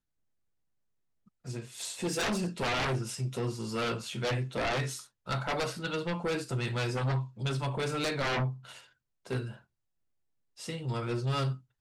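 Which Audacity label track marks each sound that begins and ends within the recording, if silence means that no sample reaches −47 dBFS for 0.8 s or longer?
1.450000	9.580000	sound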